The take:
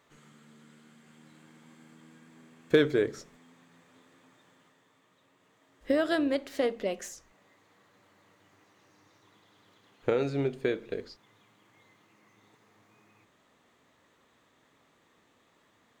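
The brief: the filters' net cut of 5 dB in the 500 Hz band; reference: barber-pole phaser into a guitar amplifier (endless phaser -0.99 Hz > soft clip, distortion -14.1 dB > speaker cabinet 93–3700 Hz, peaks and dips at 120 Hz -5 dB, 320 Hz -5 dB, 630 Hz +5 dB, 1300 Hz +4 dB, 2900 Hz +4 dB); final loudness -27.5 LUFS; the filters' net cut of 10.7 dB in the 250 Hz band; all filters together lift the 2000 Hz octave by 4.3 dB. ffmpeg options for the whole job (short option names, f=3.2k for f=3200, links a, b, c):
-filter_complex "[0:a]equalizer=f=250:t=o:g=-8,equalizer=f=500:t=o:g=-5.5,equalizer=f=2k:t=o:g=4.5,asplit=2[a][b];[b]afreqshift=-0.99[c];[a][c]amix=inputs=2:normalize=1,asoftclip=threshold=-27dB,highpass=93,equalizer=f=120:t=q:w=4:g=-5,equalizer=f=320:t=q:w=4:g=-5,equalizer=f=630:t=q:w=4:g=5,equalizer=f=1.3k:t=q:w=4:g=4,equalizer=f=2.9k:t=q:w=4:g=4,lowpass=f=3.7k:w=0.5412,lowpass=f=3.7k:w=1.3066,volume=10.5dB"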